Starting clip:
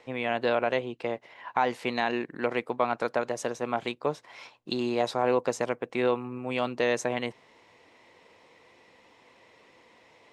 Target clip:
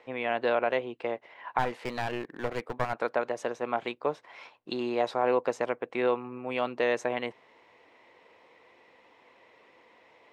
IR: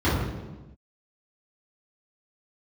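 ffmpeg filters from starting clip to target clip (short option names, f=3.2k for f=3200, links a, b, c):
-filter_complex "[0:a]bass=f=250:g=-8,treble=f=4k:g=-11,asplit=3[a][b][c];[a]afade=t=out:st=1.58:d=0.02[d];[b]aeval=exprs='clip(val(0),-1,0.0168)':c=same,afade=t=in:st=1.58:d=0.02,afade=t=out:st=2.92:d=0.02[e];[c]afade=t=in:st=2.92:d=0.02[f];[d][e][f]amix=inputs=3:normalize=0"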